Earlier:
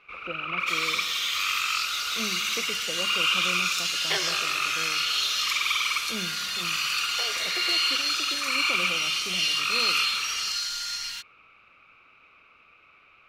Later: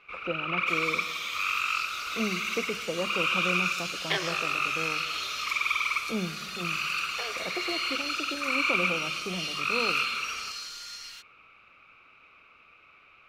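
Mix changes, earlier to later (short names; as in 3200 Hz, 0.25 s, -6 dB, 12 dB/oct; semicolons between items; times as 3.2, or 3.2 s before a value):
speech +5.5 dB; second sound -9.5 dB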